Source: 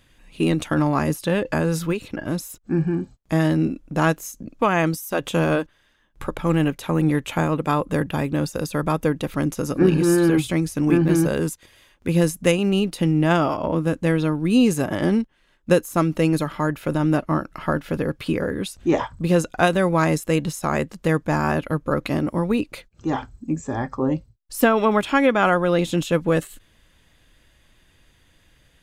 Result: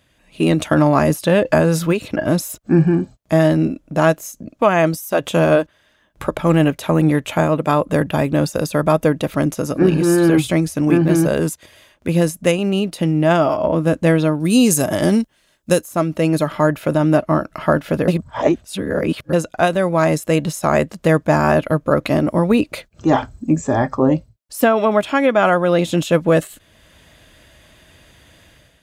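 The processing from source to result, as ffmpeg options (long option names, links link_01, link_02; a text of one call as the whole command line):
ffmpeg -i in.wav -filter_complex "[0:a]asettb=1/sr,asplit=3[link_01][link_02][link_03];[link_01]atrim=end=14.404[link_04];[link_02]atrim=start=14.4:end=15.82,asetpts=PTS-STARTPTS,afade=type=in:duration=0.004:curve=qsin,afade=type=out:start_time=1.416:duration=0.004:curve=qsin,bass=frequency=250:gain=2,treble=frequency=4000:gain=13[link_05];[link_03]atrim=start=15.816[link_06];[link_04][link_05]acrossfade=duration=0.004:curve1=hsin:curve2=qsin[link_07];[link_07][link_06]acrossfade=duration=0.004:curve1=qsin:curve2=hsin,asplit=3[link_08][link_09][link_10];[link_08]atrim=end=18.082[link_11];[link_09]atrim=start=18.078:end=19.332,asetpts=PTS-STARTPTS,areverse[link_12];[link_10]atrim=start=19.328[link_13];[link_11][link_12]acrossfade=duration=0.004:curve1=hsin:curve2=hsin[link_14];[link_14][link_13]acrossfade=duration=0.004:curve1=hsin:curve2=hsin,highpass=55,equalizer=frequency=630:width=6:gain=9,dynaudnorm=framelen=110:gausssize=7:maxgain=11.5dB,volume=-1dB" out.wav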